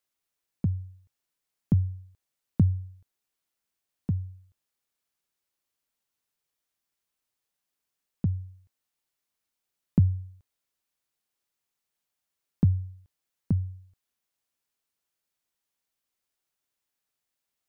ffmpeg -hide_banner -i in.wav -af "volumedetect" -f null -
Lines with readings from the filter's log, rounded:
mean_volume: -33.9 dB
max_volume: -11.1 dB